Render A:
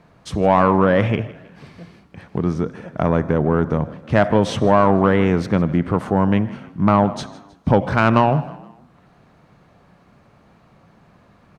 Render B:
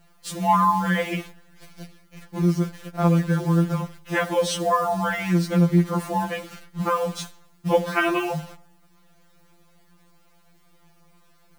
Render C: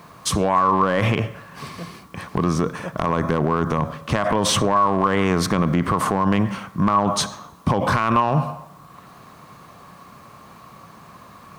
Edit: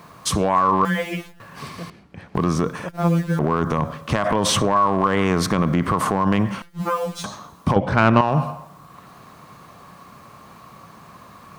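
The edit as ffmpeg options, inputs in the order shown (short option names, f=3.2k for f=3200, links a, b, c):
-filter_complex "[1:a]asplit=3[a][b][c];[0:a]asplit=2[d][e];[2:a]asplit=6[f][g][h][i][j][k];[f]atrim=end=0.852[l];[a]atrim=start=0.848:end=1.402[m];[g]atrim=start=1.398:end=1.902[n];[d]atrim=start=1.898:end=2.352[o];[h]atrim=start=2.348:end=2.892[p];[b]atrim=start=2.888:end=3.392[q];[i]atrim=start=3.388:end=6.622[r];[c]atrim=start=6.618:end=7.242[s];[j]atrim=start=7.238:end=7.762[t];[e]atrim=start=7.758:end=8.212[u];[k]atrim=start=8.208[v];[l][m]acrossfade=d=0.004:c1=hsin:c2=hsin[w];[w][n]acrossfade=d=0.004:c1=hsin:c2=hsin[x];[x][o]acrossfade=d=0.004:c1=hsin:c2=hsin[y];[y][p]acrossfade=d=0.004:c1=hsin:c2=hsin[z];[z][q]acrossfade=d=0.004:c1=hsin:c2=hsin[aa];[aa][r]acrossfade=d=0.004:c1=hsin:c2=hsin[ab];[ab][s]acrossfade=d=0.004:c1=hsin:c2=hsin[ac];[ac][t]acrossfade=d=0.004:c1=hsin:c2=hsin[ad];[ad][u]acrossfade=d=0.004:c1=hsin:c2=hsin[ae];[ae][v]acrossfade=d=0.004:c1=hsin:c2=hsin"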